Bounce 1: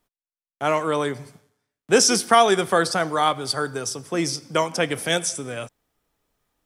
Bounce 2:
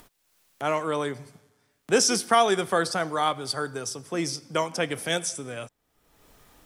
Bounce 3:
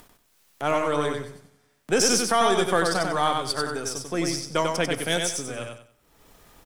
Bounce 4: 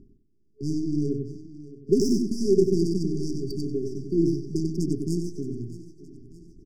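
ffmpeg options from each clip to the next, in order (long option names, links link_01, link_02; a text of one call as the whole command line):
ffmpeg -i in.wav -af "acompressor=mode=upward:threshold=-32dB:ratio=2.5,volume=-4.5dB" out.wav
ffmpeg -i in.wav -filter_complex "[0:a]aeval=exprs='if(lt(val(0),0),0.708*val(0),val(0))':channel_layout=same,asplit=2[link_01][link_02];[link_02]aecho=0:1:94|188|282|376:0.631|0.177|0.0495|0.0139[link_03];[link_01][link_03]amix=inputs=2:normalize=0,alimiter=level_in=11dB:limit=-1dB:release=50:level=0:latency=1,volume=-8.5dB" out.wav
ffmpeg -i in.wav -af "adynamicsmooth=sensitivity=1:basefreq=840,aecho=1:1:619|1238|1857|2476:0.141|0.0664|0.0312|0.0147,afftfilt=real='re*(1-between(b*sr/4096,430,4600))':imag='im*(1-between(b*sr/4096,430,4600))':win_size=4096:overlap=0.75,volume=5.5dB" out.wav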